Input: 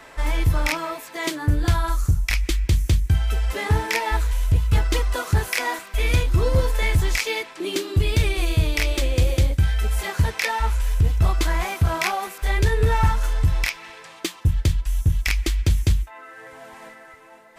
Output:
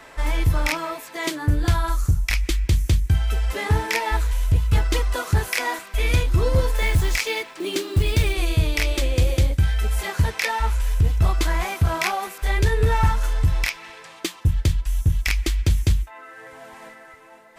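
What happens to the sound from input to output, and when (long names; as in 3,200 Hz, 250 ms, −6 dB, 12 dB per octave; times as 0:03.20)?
0:06.76–0:08.36: log-companded quantiser 6 bits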